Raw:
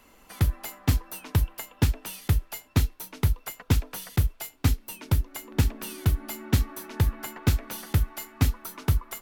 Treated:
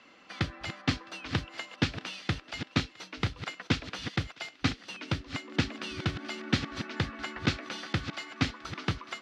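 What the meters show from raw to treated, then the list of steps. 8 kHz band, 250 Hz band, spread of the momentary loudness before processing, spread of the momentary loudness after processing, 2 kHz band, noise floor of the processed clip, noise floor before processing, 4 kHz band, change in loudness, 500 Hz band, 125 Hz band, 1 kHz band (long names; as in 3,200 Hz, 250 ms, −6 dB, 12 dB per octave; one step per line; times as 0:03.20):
−9.5 dB, −1.0 dB, 5 LU, 6 LU, +4.0 dB, −57 dBFS, −57 dBFS, +3.5 dB, −5.5 dB, −1.5 dB, −9.5 dB, 0.0 dB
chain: delay that plays each chunk backwards 556 ms, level −11 dB
loudspeaker in its box 230–4,900 Hz, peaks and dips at 240 Hz −3 dB, 420 Hz −8 dB, 640 Hz −4 dB, 920 Hz −9 dB
feedback echo with a high-pass in the loop 661 ms, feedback 61%, high-pass 1,100 Hz, level −22 dB
level +4 dB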